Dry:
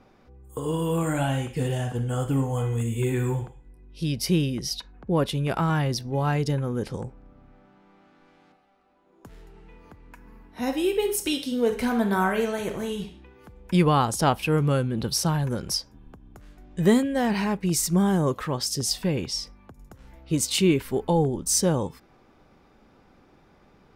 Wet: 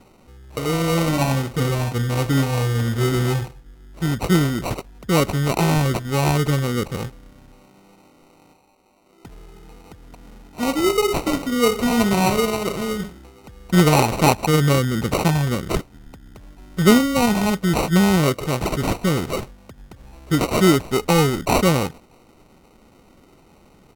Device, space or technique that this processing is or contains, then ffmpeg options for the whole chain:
crushed at another speed: -af "asetrate=55125,aresample=44100,acrusher=samples=21:mix=1:aa=0.000001,asetrate=35280,aresample=44100,volume=1.88"

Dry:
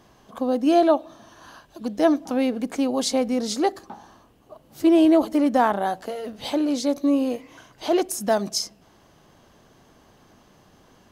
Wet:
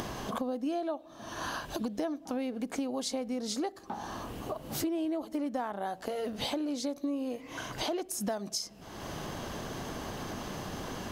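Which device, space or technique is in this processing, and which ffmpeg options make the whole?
upward and downward compression: -af "acompressor=mode=upward:threshold=0.0631:ratio=2.5,acompressor=threshold=0.0282:ratio=8"

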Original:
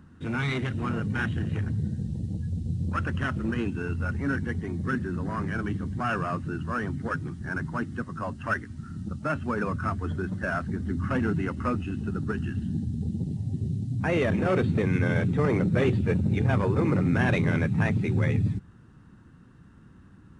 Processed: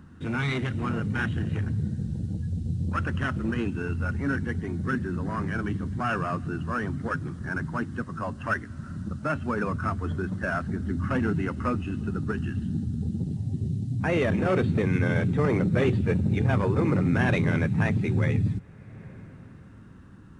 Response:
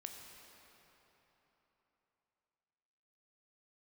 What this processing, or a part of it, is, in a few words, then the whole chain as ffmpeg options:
ducked reverb: -filter_complex "[0:a]asplit=3[s0][s1][s2];[1:a]atrim=start_sample=2205[s3];[s1][s3]afir=irnorm=-1:irlink=0[s4];[s2]apad=whole_len=899447[s5];[s4][s5]sidechaincompress=threshold=0.00631:ratio=4:attack=16:release=369,volume=0.794[s6];[s0][s6]amix=inputs=2:normalize=0"

